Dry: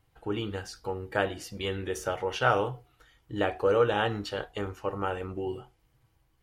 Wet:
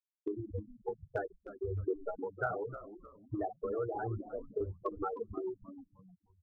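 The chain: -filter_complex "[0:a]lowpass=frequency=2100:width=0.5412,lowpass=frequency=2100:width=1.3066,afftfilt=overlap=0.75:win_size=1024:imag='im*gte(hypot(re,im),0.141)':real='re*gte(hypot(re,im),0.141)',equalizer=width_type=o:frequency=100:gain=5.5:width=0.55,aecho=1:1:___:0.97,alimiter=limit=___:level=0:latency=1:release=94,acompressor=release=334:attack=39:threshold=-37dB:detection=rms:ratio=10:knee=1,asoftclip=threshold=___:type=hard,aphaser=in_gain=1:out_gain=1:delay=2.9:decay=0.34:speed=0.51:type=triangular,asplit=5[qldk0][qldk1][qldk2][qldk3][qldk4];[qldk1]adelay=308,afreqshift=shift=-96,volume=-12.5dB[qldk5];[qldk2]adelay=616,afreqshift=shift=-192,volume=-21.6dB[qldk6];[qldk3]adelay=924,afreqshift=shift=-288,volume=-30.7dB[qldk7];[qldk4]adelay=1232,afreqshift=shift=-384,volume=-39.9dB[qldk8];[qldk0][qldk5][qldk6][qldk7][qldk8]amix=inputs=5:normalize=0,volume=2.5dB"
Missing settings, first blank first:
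2.8, -13dB, -27dB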